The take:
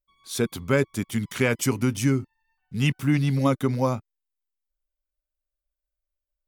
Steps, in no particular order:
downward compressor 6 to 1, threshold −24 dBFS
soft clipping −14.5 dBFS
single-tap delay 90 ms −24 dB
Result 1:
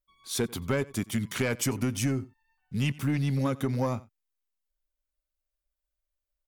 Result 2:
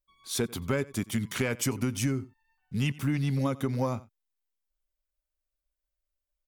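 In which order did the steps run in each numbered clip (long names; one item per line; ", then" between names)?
soft clipping, then single-tap delay, then downward compressor
single-tap delay, then downward compressor, then soft clipping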